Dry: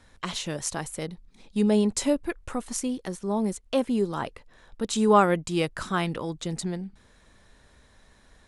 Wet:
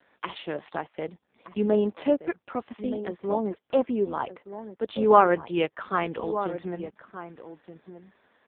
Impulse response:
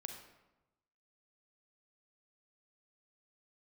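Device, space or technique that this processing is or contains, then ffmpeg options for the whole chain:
telephone: -filter_complex "[0:a]lowshelf=frequency=400:gain=4.5,asplit=2[link_01][link_02];[link_02]adelay=1224,volume=-11dB,highshelf=frequency=4000:gain=-27.6[link_03];[link_01][link_03]amix=inputs=2:normalize=0,asplit=3[link_04][link_05][link_06];[link_04]afade=type=out:start_time=3.47:duration=0.02[link_07];[link_05]adynamicequalizer=threshold=0.00158:dfrequency=4600:dqfactor=3.1:tfrequency=4600:tqfactor=3.1:attack=5:release=100:ratio=0.375:range=2:mode=cutabove:tftype=bell,afade=type=in:start_time=3.47:duration=0.02,afade=type=out:start_time=4.88:duration=0.02[link_08];[link_06]afade=type=in:start_time=4.88:duration=0.02[link_09];[link_07][link_08][link_09]amix=inputs=3:normalize=0,highpass=380,lowpass=3500,volume=2.5dB" -ar 8000 -c:a libopencore_amrnb -b:a 5150

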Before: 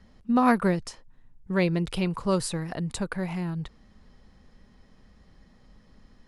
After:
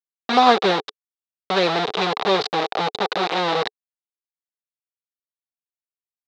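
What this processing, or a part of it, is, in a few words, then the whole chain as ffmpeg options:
hand-held game console: -af "aemphasis=mode=reproduction:type=bsi,acrusher=bits=3:mix=0:aa=0.000001,highpass=430,equalizer=frequency=430:width_type=q:width=4:gain=10,equalizer=frequency=770:width_type=q:width=4:gain=9,equalizer=frequency=1200:width_type=q:width=4:gain=4,equalizer=frequency=3800:width_type=q:width=4:gain=10,lowpass=frequency=4800:width=0.5412,lowpass=frequency=4800:width=1.3066,volume=2.5dB"

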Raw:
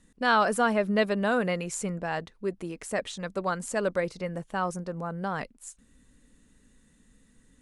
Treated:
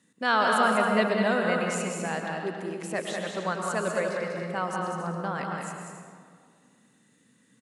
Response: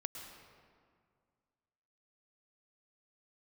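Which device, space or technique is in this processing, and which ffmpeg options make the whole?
stadium PA: -filter_complex "[0:a]highpass=frequency=130:width=0.5412,highpass=frequency=130:width=1.3066,equalizer=frequency=2600:width_type=o:width=2.9:gain=3,aecho=1:1:195.3|274.1:0.562|0.282[link_01];[1:a]atrim=start_sample=2205[link_02];[link_01][link_02]afir=irnorm=-1:irlink=0"

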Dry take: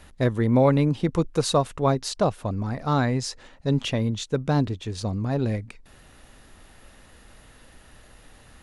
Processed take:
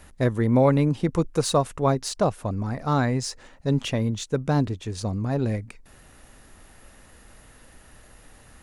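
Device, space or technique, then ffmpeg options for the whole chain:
exciter from parts: -filter_complex "[0:a]asplit=2[link_01][link_02];[link_02]highpass=3100,asoftclip=type=tanh:threshold=-28dB,highpass=3200,volume=-5dB[link_03];[link_01][link_03]amix=inputs=2:normalize=0"

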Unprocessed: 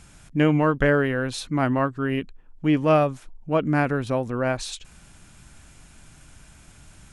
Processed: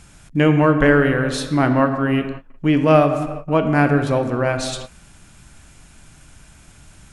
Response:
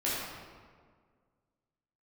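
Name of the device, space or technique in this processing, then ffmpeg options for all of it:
keyed gated reverb: -filter_complex "[0:a]asplit=3[link_01][link_02][link_03];[1:a]atrim=start_sample=2205[link_04];[link_02][link_04]afir=irnorm=-1:irlink=0[link_05];[link_03]apad=whole_len=314345[link_06];[link_05][link_06]sidechaingate=range=-33dB:threshold=-41dB:ratio=16:detection=peak,volume=-12.5dB[link_07];[link_01][link_07]amix=inputs=2:normalize=0,volume=3dB"

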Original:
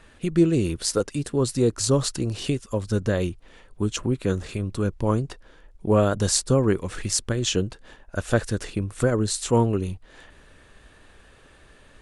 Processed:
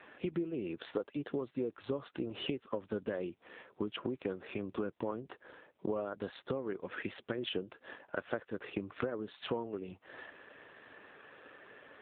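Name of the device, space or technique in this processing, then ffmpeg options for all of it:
voicemail: -af "highpass=300,lowpass=2900,acompressor=threshold=-36dB:ratio=12,volume=3.5dB" -ar 8000 -c:a libopencore_amrnb -b:a 7400

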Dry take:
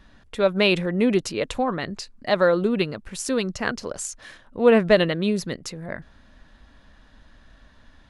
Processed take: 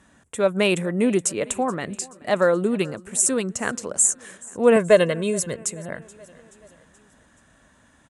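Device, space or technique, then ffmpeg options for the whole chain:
budget condenser microphone: -filter_complex "[0:a]lowpass=9800,asettb=1/sr,asplit=3[link_01][link_02][link_03];[link_01]atrim=end=4.764[link_04];[link_02]atrim=start=4.76:end=5.59,asetpts=PTS-STARTPTS,afade=type=in:duration=0.004:curve=qsin,afade=type=out:start_time=0.826:duration=0.004:curve=qsin,aecho=1:1:1.9:0.65,atrim=end_sample=36603[link_05];[link_03]atrim=start=5.586[link_06];[link_04][link_05]acrossfade=duration=0.004:curve1=hsin:curve2=qsin[link_07];[link_07][link_06]acrossfade=duration=0.004:curve1=qsin:curve2=hsin,highpass=100,highshelf=frequency=6100:width_type=q:width=3:gain=11,aecho=1:1:428|856|1284|1712:0.075|0.042|0.0235|0.0132"

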